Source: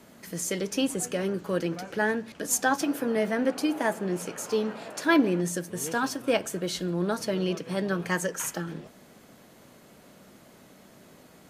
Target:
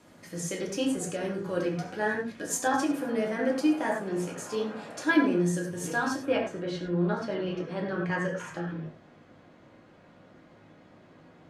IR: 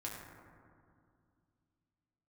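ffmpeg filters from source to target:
-filter_complex "[0:a]asetnsamples=n=441:p=0,asendcmd='6.26 lowpass f 3300',lowpass=9.7k[a];[1:a]atrim=start_sample=2205,afade=t=out:st=0.16:d=0.01,atrim=end_sample=7497[b];[a][b]afir=irnorm=-1:irlink=0"

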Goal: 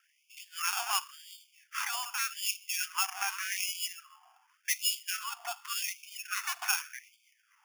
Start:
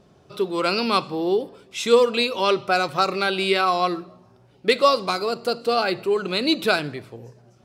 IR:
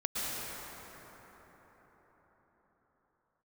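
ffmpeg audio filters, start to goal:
-filter_complex "[0:a]asettb=1/sr,asplit=3[a][b][c];[a]atrim=end=3.034[d];[b]atrim=start=3.03:end=3.77,asetpts=PTS-STARTPTS,afade=t=in:d=0.004:c=qsin,afade=t=out:st=0.736:d=0.004:c=qsin,aeval=exprs='if(lt(val(0),0),0.251*val(0),val(0))':c=same[e];[c]atrim=start=3.766[f];[d][e]acrossfade=d=0.004:c1=hsin:c2=qsin[g];[g][f]acrossfade=d=0.004:c1=qsin:c2=hsin,acrossover=split=870[h][i];[i]acrusher=samples=11:mix=1:aa=0.000001[j];[h][j]amix=inputs=2:normalize=0,acrossover=split=470|3000[k][l][m];[l]acompressor=threshold=-32dB:ratio=8[n];[k][n][m]amix=inputs=3:normalize=0,afftfilt=real='re*gte(b*sr/1024,670*pow(2200/670,0.5+0.5*sin(2*PI*0.87*pts/sr)))':imag='im*gte(b*sr/1024,670*pow(2200/670,0.5+0.5*sin(2*PI*0.87*pts/sr)))':win_size=1024:overlap=0.75"

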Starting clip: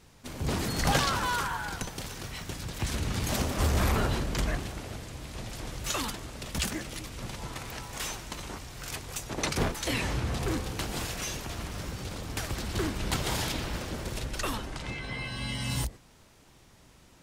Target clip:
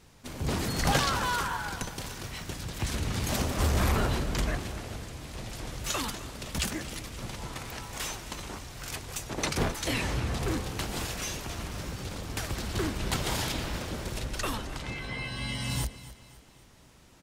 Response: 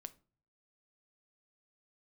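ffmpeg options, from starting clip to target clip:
-filter_complex "[0:a]asettb=1/sr,asplit=3[a][b][c];[a]atrim=end=5.014[d];[b]atrim=start=5.01:end=5.41,asetpts=PTS-STARTPTS,afade=t=in:d=0.004:c=qsin,afade=t=out:st=0.396:d=0.004:c=qsin,asoftclip=type=hard:threshold=-32.5dB[e];[c]atrim=start=5.406[f];[d][e]acrossfade=d=0.004:c1=hsin:c2=qsin[g];[g][f]acrossfade=d=0.004:c1=qsin:c2=hsin,aecho=1:1:263|526|789|1052:0.158|0.0713|0.0321|0.0144"

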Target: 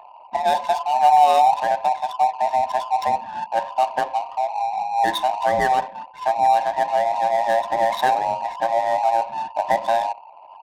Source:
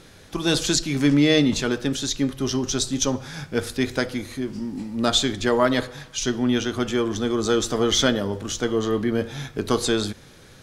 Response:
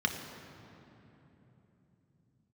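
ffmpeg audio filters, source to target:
-filter_complex "[0:a]afftfilt=real='real(if(between(b,1,1008),(2*floor((b-1)/48)+1)*48-b,b),0)':imag='imag(if(between(b,1,1008),(2*floor((b-1)/48)+1)*48-b,b),0)*if(between(b,1,1008),-1,1)':win_size=2048:overlap=0.75,aecho=1:1:1.1:0.83,asplit=2[a][b];[b]acompressor=threshold=-29dB:ratio=6,volume=-1.5dB[c];[a][c]amix=inputs=2:normalize=0,bandpass=f=540:t=q:w=0.62:csg=0,asplit=2[d][e];[e]adelay=62,lowpass=f=860:p=1,volume=-16.5dB,asplit=2[f][g];[g]adelay=62,lowpass=f=860:p=1,volume=0.37,asplit=2[h][i];[i]adelay=62,lowpass=f=860:p=1,volume=0.37[j];[f][h][j]amix=inputs=3:normalize=0[k];[d][k]amix=inputs=2:normalize=0,afftfilt=real='re*gte(hypot(re,im),0.0158)':imag='im*gte(hypot(re,im),0.0158)':win_size=1024:overlap=0.75,adynamicsmooth=sensitivity=4.5:basefreq=660"

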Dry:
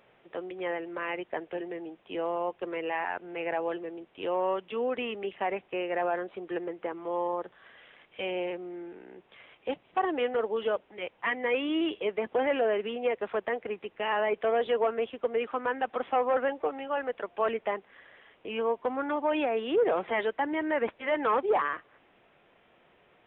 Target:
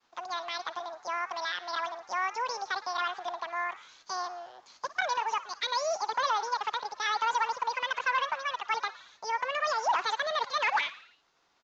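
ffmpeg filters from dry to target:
-filter_complex "[0:a]agate=range=-33dB:threshold=-56dB:ratio=3:detection=peak,asplit=7[a][b][c][d][e][f][g];[b]adelay=113,afreqshift=48,volume=-17dB[h];[c]adelay=226,afreqshift=96,volume=-21.3dB[i];[d]adelay=339,afreqshift=144,volume=-25.6dB[j];[e]adelay=452,afreqshift=192,volume=-29.9dB[k];[f]adelay=565,afreqshift=240,volume=-34.2dB[l];[g]adelay=678,afreqshift=288,volume=-38.5dB[m];[a][h][i][j][k][l][m]amix=inputs=7:normalize=0,asetrate=88200,aresample=44100,volume=-1.5dB"

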